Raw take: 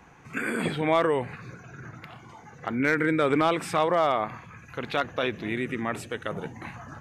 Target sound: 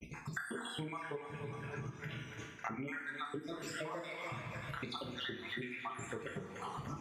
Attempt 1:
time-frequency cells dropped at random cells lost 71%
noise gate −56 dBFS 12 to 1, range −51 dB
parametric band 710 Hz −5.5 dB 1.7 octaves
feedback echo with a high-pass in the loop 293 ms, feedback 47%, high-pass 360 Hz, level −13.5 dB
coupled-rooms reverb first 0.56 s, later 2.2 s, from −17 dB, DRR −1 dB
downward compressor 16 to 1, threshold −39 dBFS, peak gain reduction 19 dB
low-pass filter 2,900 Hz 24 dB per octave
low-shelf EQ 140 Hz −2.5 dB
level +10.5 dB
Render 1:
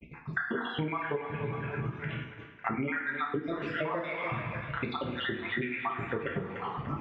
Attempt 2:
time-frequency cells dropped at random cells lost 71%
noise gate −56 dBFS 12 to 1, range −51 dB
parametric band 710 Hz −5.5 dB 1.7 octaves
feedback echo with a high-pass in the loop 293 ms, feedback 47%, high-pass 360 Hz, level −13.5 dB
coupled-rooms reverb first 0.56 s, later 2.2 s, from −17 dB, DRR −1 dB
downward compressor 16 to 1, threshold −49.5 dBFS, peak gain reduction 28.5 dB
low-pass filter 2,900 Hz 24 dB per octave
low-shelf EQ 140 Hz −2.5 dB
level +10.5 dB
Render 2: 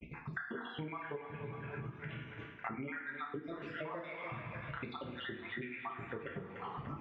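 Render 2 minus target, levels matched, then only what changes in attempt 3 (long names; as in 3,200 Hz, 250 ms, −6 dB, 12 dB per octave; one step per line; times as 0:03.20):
4,000 Hz band −5.5 dB
remove: low-pass filter 2,900 Hz 24 dB per octave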